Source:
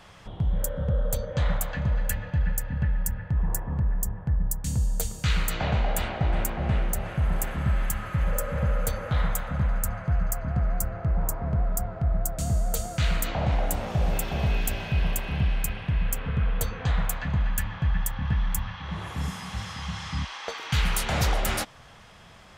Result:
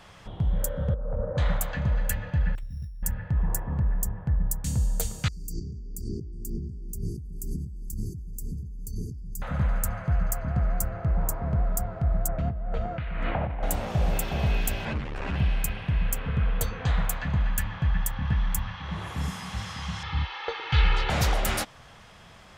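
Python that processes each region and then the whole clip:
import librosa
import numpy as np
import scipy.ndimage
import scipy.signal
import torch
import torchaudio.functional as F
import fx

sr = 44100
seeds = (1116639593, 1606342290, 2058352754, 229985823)

y = fx.chain(x, sr, fx.cheby2_lowpass(hz=4400.0, order=4, stop_db=60),
    fx.over_compress(threshold_db=-28.0, ratio=-1.0), at=(0.94, 1.38))
y = fx.chain(y, sr, fx.tone_stack(knobs='10-0-1'),
    fx.over_compress(threshold_db=-35.0, ratio=-1.0),
    fx.resample_bad(factor=8, down='none', up='hold'), at=(2.55, 3.03))
y = fx.chain(y, sr, fx.over_compress(threshold_db=-33.0, ratio=-1.0),
    fx.brickwall_bandstop(low_hz=440.0, high_hz=4500.0), at=(5.28, 9.42))
y = fx.chain(y, sr, fx.lowpass(hz=2500.0, slope=24),
    fx.over_compress(threshold_db=-28.0, ratio=-1.0), at=(12.28, 13.63))
y = fx.chain(y, sr, fx.clip_1bit(),
    fx.lowpass(hz=2000.0, slope=12),
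    fx.ensemble(), at=(14.85, 15.36))
y = fx.chain(y, sr, fx.lowpass(hz=4000.0, slope=24),
    fx.comb(ms=2.3, depth=0.77), at=(20.03, 21.1))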